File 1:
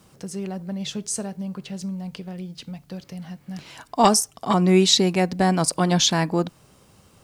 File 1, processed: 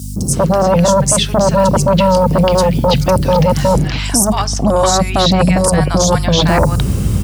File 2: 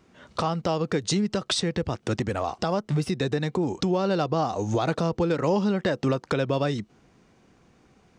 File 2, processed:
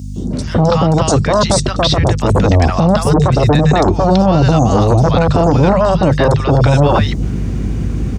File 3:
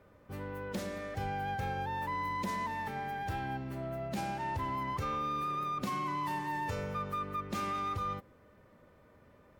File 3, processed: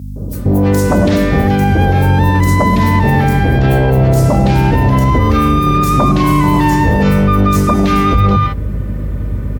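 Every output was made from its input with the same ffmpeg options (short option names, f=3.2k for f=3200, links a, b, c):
-filter_complex "[0:a]areverse,acompressor=threshold=-35dB:ratio=10,areverse,highshelf=f=4.9k:g=6,bandreject=f=50:t=h:w=6,bandreject=f=100:t=h:w=6,bandreject=f=150:t=h:w=6,acrossover=split=820|4900[a][b][c];[a]adelay=160[d];[b]adelay=330[e];[d][e][c]amix=inputs=3:normalize=0,acrossover=split=330[f][g];[f]aeval=exprs='0.0251*sin(PI/2*3.98*val(0)/0.0251)':c=same[h];[h][g]amix=inputs=2:normalize=0,aeval=exprs='val(0)+0.00501*(sin(2*PI*50*n/s)+sin(2*PI*2*50*n/s)/2+sin(2*PI*3*50*n/s)/3+sin(2*PI*4*50*n/s)/4+sin(2*PI*5*50*n/s)/5)':c=same,asubboost=boost=2:cutoff=120,highpass=f=51:w=0.5412,highpass=f=51:w=1.3066,alimiter=level_in=25.5dB:limit=-1dB:release=50:level=0:latency=1,volume=-1dB"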